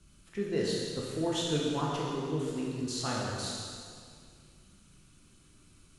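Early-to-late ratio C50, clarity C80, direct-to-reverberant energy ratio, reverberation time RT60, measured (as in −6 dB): −1.0 dB, 0.5 dB, −4.0 dB, 2.1 s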